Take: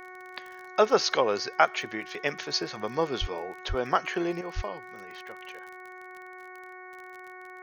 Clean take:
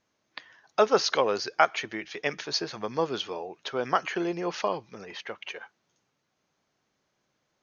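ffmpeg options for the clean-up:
-filter_complex "[0:a]adeclick=t=4,bandreject=f=368.3:t=h:w=4,bandreject=f=736.6:t=h:w=4,bandreject=f=1.1049k:t=h:w=4,bandreject=f=1.4732k:t=h:w=4,bandreject=f=1.8415k:t=h:w=4,bandreject=f=2.2098k:t=h:w=4,asplit=3[a][b][c];[a]afade=t=out:st=3.2:d=0.02[d];[b]highpass=f=140:w=0.5412,highpass=f=140:w=1.3066,afade=t=in:st=3.2:d=0.02,afade=t=out:st=3.32:d=0.02[e];[c]afade=t=in:st=3.32:d=0.02[f];[d][e][f]amix=inputs=3:normalize=0,asplit=3[g][h][i];[g]afade=t=out:st=3.68:d=0.02[j];[h]highpass=f=140:w=0.5412,highpass=f=140:w=1.3066,afade=t=in:st=3.68:d=0.02,afade=t=out:st=3.8:d=0.02[k];[i]afade=t=in:st=3.8:d=0.02[l];[j][k][l]amix=inputs=3:normalize=0,asplit=3[m][n][o];[m]afade=t=out:st=4.55:d=0.02[p];[n]highpass=f=140:w=0.5412,highpass=f=140:w=1.3066,afade=t=in:st=4.55:d=0.02,afade=t=out:st=4.67:d=0.02[q];[o]afade=t=in:st=4.67:d=0.02[r];[p][q][r]amix=inputs=3:normalize=0,asetnsamples=n=441:p=0,asendcmd='4.41 volume volume 8dB',volume=0dB"

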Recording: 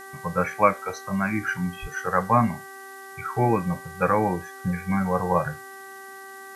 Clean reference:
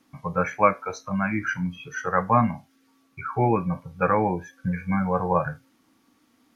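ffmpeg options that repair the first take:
-filter_complex "[0:a]bandreject=f=387.9:t=h:w=4,bandreject=f=775.8:t=h:w=4,bandreject=f=1.1637k:t=h:w=4,bandreject=f=1.5516k:t=h:w=4,bandreject=f=1.9395k:t=h:w=4,asplit=3[a][b][c];[a]afade=t=out:st=1.81:d=0.02[d];[b]highpass=f=140:w=0.5412,highpass=f=140:w=1.3066,afade=t=in:st=1.81:d=0.02,afade=t=out:st=1.93:d=0.02[e];[c]afade=t=in:st=1.93:d=0.02[f];[d][e][f]amix=inputs=3:normalize=0,afftdn=nr=22:nf=-42"

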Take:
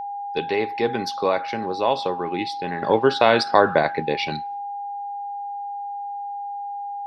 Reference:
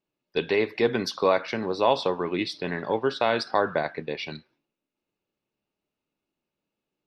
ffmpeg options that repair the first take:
-af "bandreject=f=810:w=30,asetnsamples=n=441:p=0,asendcmd='2.82 volume volume -7.5dB',volume=0dB"

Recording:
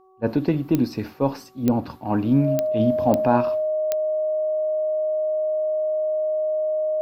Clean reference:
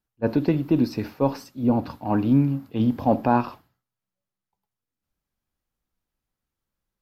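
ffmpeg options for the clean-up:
-af "adeclick=t=4,bandreject=f=376.8:t=h:w=4,bandreject=f=753.6:t=h:w=4,bandreject=f=1.1304k:t=h:w=4,bandreject=f=620:w=30"

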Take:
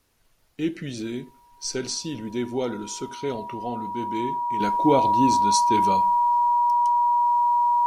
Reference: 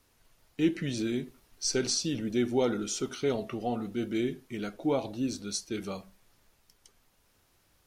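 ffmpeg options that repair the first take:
-af "bandreject=f=960:w=30,asetnsamples=n=441:p=0,asendcmd='4.6 volume volume -8.5dB',volume=0dB"

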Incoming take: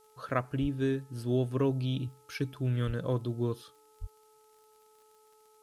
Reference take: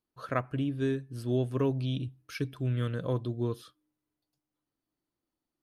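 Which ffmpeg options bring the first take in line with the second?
-filter_complex "[0:a]adeclick=t=4,bandreject=f=431.9:t=h:w=4,bandreject=f=863.8:t=h:w=4,bandreject=f=1.2957k:t=h:w=4,asplit=3[a][b][c];[a]afade=t=out:st=0.61:d=0.02[d];[b]highpass=f=140:w=0.5412,highpass=f=140:w=1.3066,afade=t=in:st=0.61:d=0.02,afade=t=out:st=0.73:d=0.02[e];[c]afade=t=in:st=0.73:d=0.02[f];[d][e][f]amix=inputs=3:normalize=0,asplit=3[g][h][i];[g]afade=t=out:st=2.86:d=0.02[j];[h]highpass=f=140:w=0.5412,highpass=f=140:w=1.3066,afade=t=in:st=2.86:d=0.02,afade=t=out:st=2.98:d=0.02[k];[i]afade=t=in:st=2.98:d=0.02[l];[j][k][l]amix=inputs=3:normalize=0,asplit=3[m][n][o];[m]afade=t=out:st=4:d=0.02[p];[n]highpass=f=140:w=0.5412,highpass=f=140:w=1.3066,afade=t=in:st=4:d=0.02,afade=t=out:st=4.12:d=0.02[q];[o]afade=t=in:st=4.12:d=0.02[r];[p][q][r]amix=inputs=3:normalize=0,agate=range=-21dB:threshold=-54dB"

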